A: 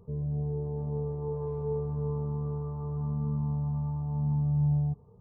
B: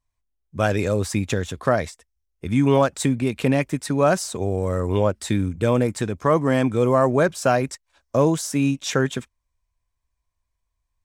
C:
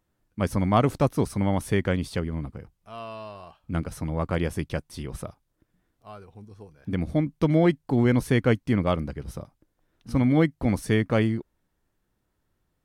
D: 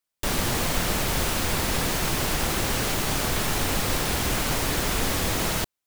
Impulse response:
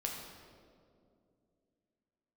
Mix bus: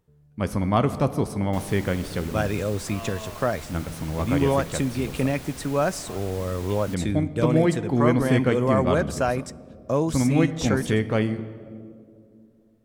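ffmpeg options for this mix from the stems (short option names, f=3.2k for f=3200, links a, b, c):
-filter_complex "[0:a]acompressor=threshold=-42dB:ratio=2.5,volume=-17.5dB[a];[1:a]adelay=1750,volume=-5.5dB,asplit=2[b][c];[c]volume=-20dB[d];[2:a]volume=-3dB,asplit=2[e][f];[f]volume=-8dB[g];[3:a]adelay=1300,volume=-16.5dB[h];[4:a]atrim=start_sample=2205[i];[d][g]amix=inputs=2:normalize=0[j];[j][i]afir=irnorm=-1:irlink=0[k];[a][b][e][h][k]amix=inputs=5:normalize=0"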